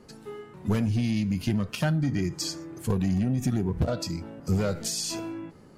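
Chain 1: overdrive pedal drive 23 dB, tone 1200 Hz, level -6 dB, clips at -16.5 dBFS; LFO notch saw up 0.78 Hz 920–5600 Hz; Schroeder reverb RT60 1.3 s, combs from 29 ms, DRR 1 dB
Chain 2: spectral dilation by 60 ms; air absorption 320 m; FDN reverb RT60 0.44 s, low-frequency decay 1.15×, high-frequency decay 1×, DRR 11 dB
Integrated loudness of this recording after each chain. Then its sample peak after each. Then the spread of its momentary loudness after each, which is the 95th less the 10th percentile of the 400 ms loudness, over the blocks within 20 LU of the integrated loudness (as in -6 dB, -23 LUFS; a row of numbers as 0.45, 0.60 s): -25.0, -26.5 LUFS; -11.5, -11.0 dBFS; 8, 11 LU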